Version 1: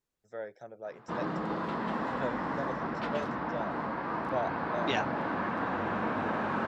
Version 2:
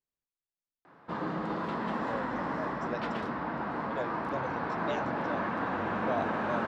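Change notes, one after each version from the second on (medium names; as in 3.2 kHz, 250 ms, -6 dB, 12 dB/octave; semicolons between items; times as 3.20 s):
first voice: entry +1.75 s; second voice -10.5 dB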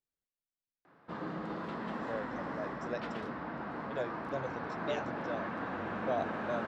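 background -5.0 dB; master: add peaking EQ 940 Hz -3.5 dB 0.49 oct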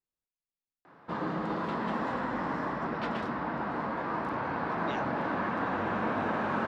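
first voice -10.0 dB; background +6.0 dB; master: add peaking EQ 940 Hz +3.5 dB 0.49 oct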